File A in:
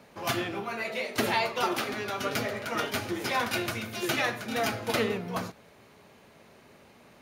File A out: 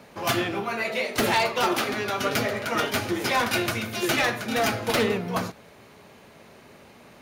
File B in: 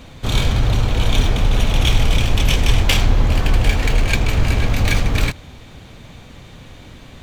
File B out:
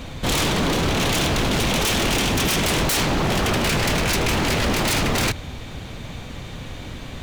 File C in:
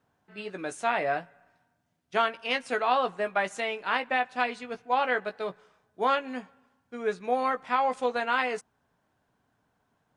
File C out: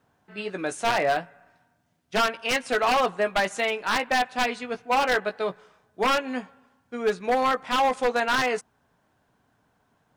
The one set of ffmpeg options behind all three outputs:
ffmpeg -i in.wav -af "apsyclip=5.5dB,aeval=exprs='0.168*(abs(mod(val(0)/0.168+3,4)-2)-1)':channel_layout=same" out.wav

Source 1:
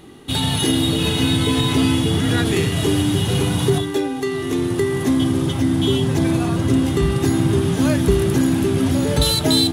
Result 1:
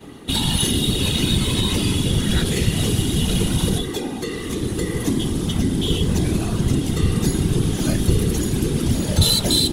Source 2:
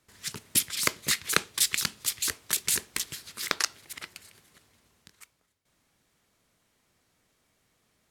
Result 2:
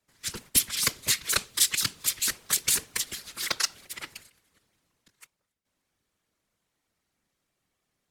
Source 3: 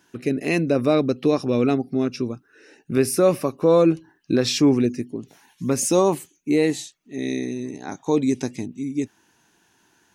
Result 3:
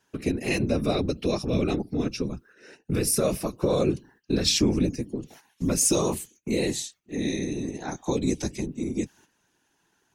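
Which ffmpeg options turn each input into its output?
ffmpeg -i in.wav -filter_complex "[0:a]agate=range=-11dB:threshold=-50dB:ratio=16:detection=peak,acrossover=split=160|3000[link_01][link_02][link_03];[link_02]acompressor=threshold=-35dB:ratio=2[link_04];[link_01][link_04][link_03]amix=inputs=3:normalize=0,afftfilt=real='hypot(re,im)*cos(2*PI*random(0))':imag='hypot(re,im)*sin(2*PI*random(1))':win_size=512:overlap=0.75,volume=8.5dB" out.wav

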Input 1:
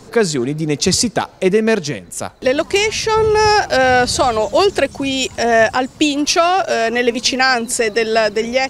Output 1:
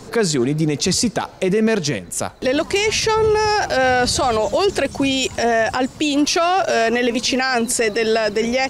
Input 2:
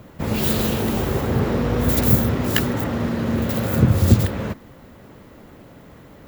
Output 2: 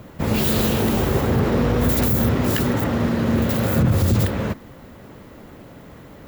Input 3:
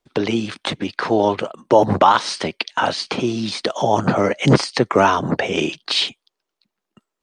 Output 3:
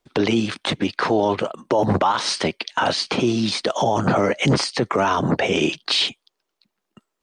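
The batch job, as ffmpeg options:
ffmpeg -i in.wav -af "alimiter=limit=-12dB:level=0:latency=1:release=24,volume=2.5dB" out.wav

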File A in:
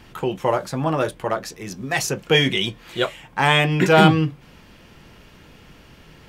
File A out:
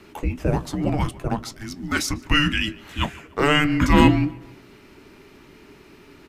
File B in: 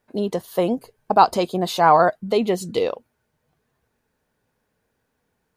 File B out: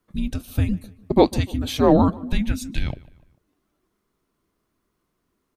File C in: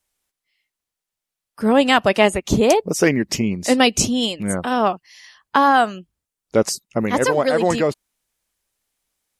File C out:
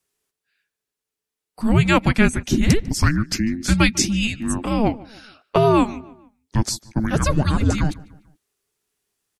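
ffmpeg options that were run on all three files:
ffmpeg -i in.wav -filter_complex "[0:a]afreqshift=-440,asplit=2[link_01][link_02];[link_02]adelay=148,lowpass=frequency=3200:poles=1,volume=-21dB,asplit=2[link_03][link_04];[link_04]adelay=148,lowpass=frequency=3200:poles=1,volume=0.46,asplit=2[link_05][link_06];[link_06]adelay=148,lowpass=frequency=3200:poles=1,volume=0.46[link_07];[link_03][link_05][link_07]amix=inputs=3:normalize=0[link_08];[link_01][link_08]amix=inputs=2:normalize=0,volume=-1dB" out.wav

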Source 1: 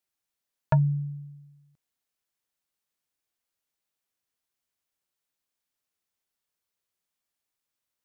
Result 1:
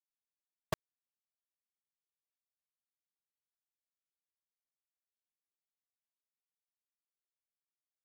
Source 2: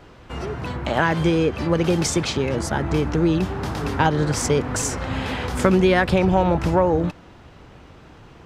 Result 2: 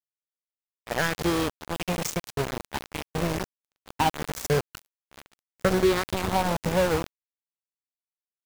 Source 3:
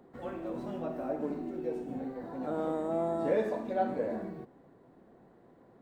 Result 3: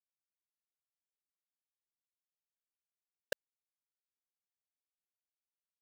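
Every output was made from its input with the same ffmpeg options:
ffmpeg -i in.wav -af "afftfilt=real='re*pow(10,13/40*sin(2*PI*(0.57*log(max(b,1)*sr/1024/100)/log(2)-(-0.87)*(pts-256)/sr)))':imag='im*pow(10,13/40*sin(2*PI*(0.57*log(max(b,1)*sr/1024/100)/log(2)-(-0.87)*(pts-256)/sr)))':win_size=1024:overlap=0.75,aeval=exprs='val(0)*gte(abs(val(0)),0.188)':channel_layout=same,agate=range=-33dB:threshold=-25dB:ratio=3:detection=peak,volume=-8dB" out.wav

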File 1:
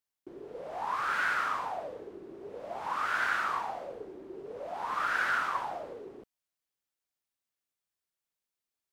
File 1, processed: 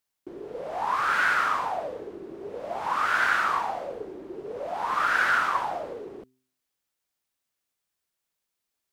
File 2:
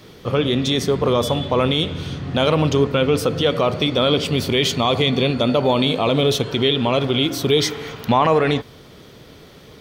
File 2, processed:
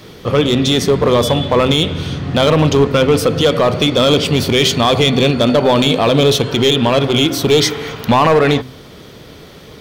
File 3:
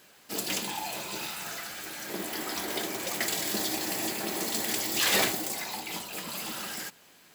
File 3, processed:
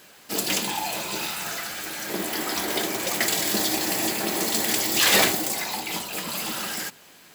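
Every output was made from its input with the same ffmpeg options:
ffmpeg -i in.wav -af "asoftclip=type=hard:threshold=-12dB,bandreject=frequency=128.6:width_type=h:width=4,bandreject=frequency=257.2:width_type=h:width=4,bandreject=frequency=385.8:width_type=h:width=4,volume=6.5dB" out.wav

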